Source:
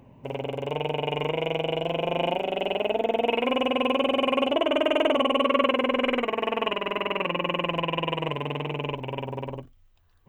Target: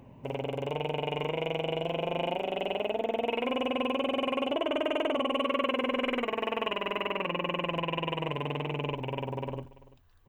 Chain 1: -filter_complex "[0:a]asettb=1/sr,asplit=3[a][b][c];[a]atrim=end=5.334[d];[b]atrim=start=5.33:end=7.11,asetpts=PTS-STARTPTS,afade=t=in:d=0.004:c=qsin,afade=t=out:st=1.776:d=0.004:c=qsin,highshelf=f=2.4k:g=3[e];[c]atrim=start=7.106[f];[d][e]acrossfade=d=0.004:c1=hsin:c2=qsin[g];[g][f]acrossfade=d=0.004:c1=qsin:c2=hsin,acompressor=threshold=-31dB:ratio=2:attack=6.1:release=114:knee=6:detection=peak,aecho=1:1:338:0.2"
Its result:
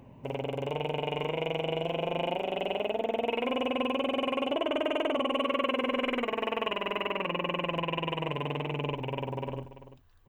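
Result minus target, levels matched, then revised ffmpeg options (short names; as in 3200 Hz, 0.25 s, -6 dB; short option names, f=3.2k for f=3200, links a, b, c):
echo-to-direct +6 dB
-filter_complex "[0:a]asettb=1/sr,asplit=3[a][b][c];[a]atrim=end=5.334[d];[b]atrim=start=5.33:end=7.11,asetpts=PTS-STARTPTS,afade=t=in:d=0.004:c=qsin,afade=t=out:st=1.776:d=0.004:c=qsin,highshelf=f=2.4k:g=3[e];[c]atrim=start=7.106[f];[d][e]acrossfade=d=0.004:c1=hsin:c2=qsin[g];[g][f]acrossfade=d=0.004:c1=qsin:c2=hsin,acompressor=threshold=-31dB:ratio=2:attack=6.1:release=114:knee=6:detection=peak,aecho=1:1:338:0.1"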